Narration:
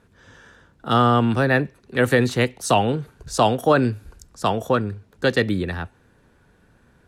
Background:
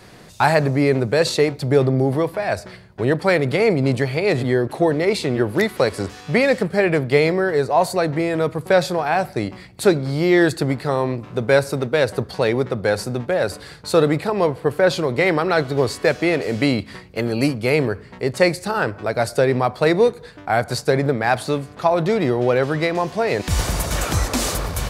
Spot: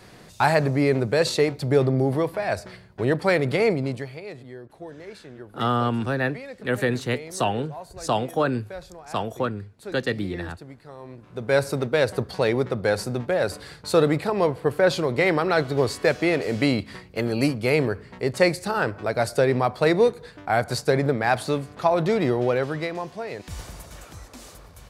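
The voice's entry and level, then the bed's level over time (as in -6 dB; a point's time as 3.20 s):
4.70 s, -6.0 dB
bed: 3.66 s -3.5 dB
4.40 s -22 dB
10.97 s -22 dB
11.62 s -3 dB
22.34 s -3 dB
24.15 s -22 dB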